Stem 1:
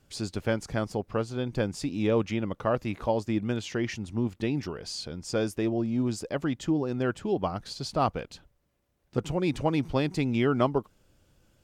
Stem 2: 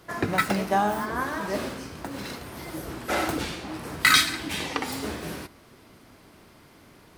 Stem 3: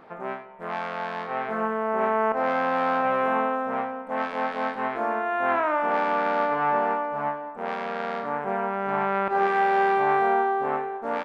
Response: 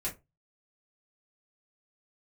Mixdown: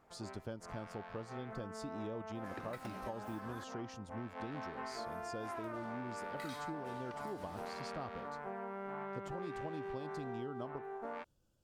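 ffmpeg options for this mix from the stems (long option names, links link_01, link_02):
-filter_complex "[0:a]equalizer=frequency=2100:width=2.4:gain=-12.5,volume=-12.5dB[link_01];[1:a]adelay=2350,volume=-14.5dB,asplit=3[link_02][link_03][link_04];[link_02]atrim=end=3.64,asetpts=PTS-STARTPTS,afade=type=out:start_time=3.636:duration=0.004:curve=hsin[link_05];[link_03]atrim=start=3.64:end=4.89,asetpts=PTS-STARTPTS,volume=0[link_06];[link_04]atrim=start=4.89,asetpts=PTS-STARTPTS,afade=type=in:duration=0.004:curve=hsin[link_07];[link_05][link_06][link_07]concat=n=3:v=0:a=1[link_08];[2:a]volume=-6.5dB,afade=type=in:start_time=4.35:duration=0.26:silence=0.237137,asplit=2[link_09][link_10];[link_10]volume=-17.5dB[link_11];[link_08][link_09]amix=inputs=2:normalize=0,acompressor=threshold=-40dB:ratio=6,volume=0dB[link_12];[3:a]atrim=start_sample=2205[link_13];[link_11][link_13]afir=irnorm=-1:irlink=0[link_14];[link_01][link_12][link_14]amix=inputs=3:normalize=0,acompressor=threshold=-39dB:ratio=6"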